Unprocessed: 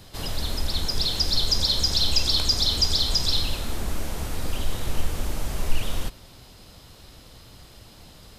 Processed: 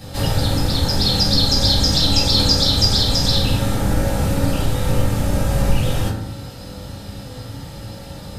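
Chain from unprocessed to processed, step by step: in parallel at -1 dB: compressor, threshold -29 dBFS, peak gain reduction 16.5 dB; on the sum: low shelf 260 Hz +5 dB; reverb RT60 0.75 s, pre-delay 3 ms, DRR -8 dB; gain -2 dB

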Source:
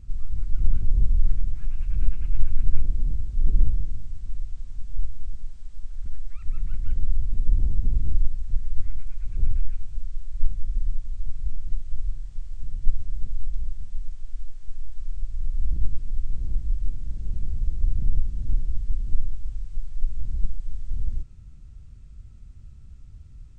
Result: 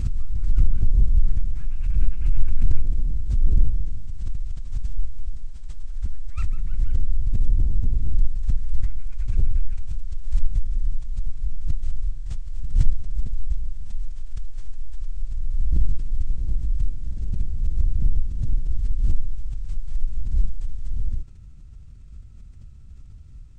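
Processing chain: backwards sustainer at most 62 dB/s

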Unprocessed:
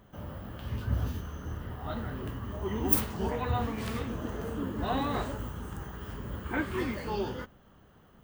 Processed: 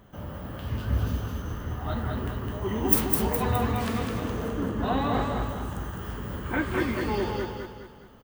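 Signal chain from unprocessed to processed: 4.48–5.49 high shelf 5000 Hz -8 dB; feedback echo 0.208 s, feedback 43%, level -4 dB; gain +3.5 dB

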